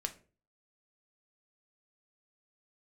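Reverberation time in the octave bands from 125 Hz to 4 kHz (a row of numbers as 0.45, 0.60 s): 0.55, 0.45, 0.45, 0.35, 0.30, 0.25 s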